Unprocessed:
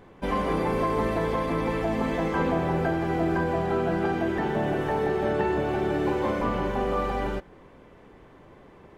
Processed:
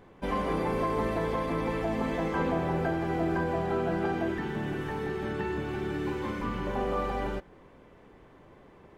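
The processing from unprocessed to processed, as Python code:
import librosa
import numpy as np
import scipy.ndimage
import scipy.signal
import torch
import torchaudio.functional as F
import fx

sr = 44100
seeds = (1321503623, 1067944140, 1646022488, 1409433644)

y = fx.peak_eq(x, sr, hz=630.0, db=-14.0, octaves=0.78, at=(4.34, 6.67))
y = F.gain(torch.from_numpy(y), -3.5).numpy()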